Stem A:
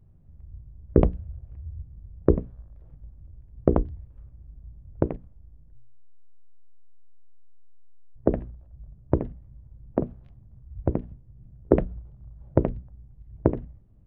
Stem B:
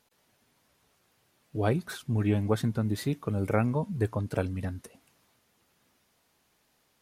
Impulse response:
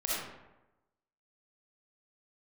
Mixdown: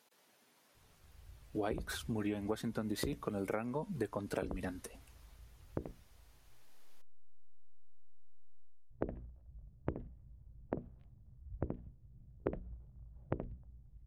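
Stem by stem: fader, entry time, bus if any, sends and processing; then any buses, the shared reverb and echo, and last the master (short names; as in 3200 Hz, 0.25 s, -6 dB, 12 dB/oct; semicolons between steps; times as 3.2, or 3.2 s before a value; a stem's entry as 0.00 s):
6.45 s -13.5 dB -> 6.95 s -1 dB -> 8.62 s -1 dB -> 8.89 s -9.5 dB, 0.75 s, no send, dry
+0.5 dB, 0.00 s, no send, HPF 230 Hz 12 dB/oct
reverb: off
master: compressor 8:1, threshold -33 dBFS, peak gain reduction 13.5 dB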